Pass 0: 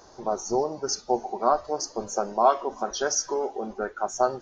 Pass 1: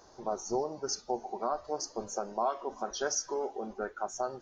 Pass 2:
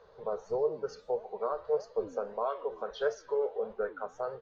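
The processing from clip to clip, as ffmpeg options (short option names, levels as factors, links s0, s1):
-af "alimiter=limit=0.2:level=0:latency=1:release=218,volume=0.501"
-af "firequalizer=gain_entry='entry(180,0);entry(310,-24);entry(450,12);entry(720,-6);entry(1100,1);entry(3800,-1);entry(5500,-21)':delay=0.05:min_phase=1,flanger=delay=4.3:depth=8:regen=89:speed=1.6:shape=sinusoidal,volume=1.41"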